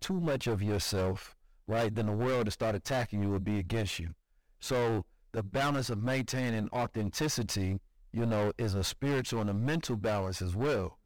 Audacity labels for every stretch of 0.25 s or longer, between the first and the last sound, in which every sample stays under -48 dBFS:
1.320000	1.680000	silence
4.130000	4.620000	silence
5.030000	5.340000	silence
7.780000	8.130000	silence